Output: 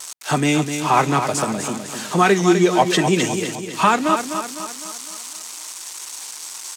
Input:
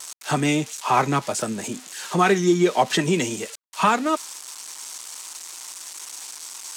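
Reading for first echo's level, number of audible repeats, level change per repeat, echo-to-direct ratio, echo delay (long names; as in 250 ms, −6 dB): −8.0 dB, 5, −6.0 dB, −7.0 dB, 254 ms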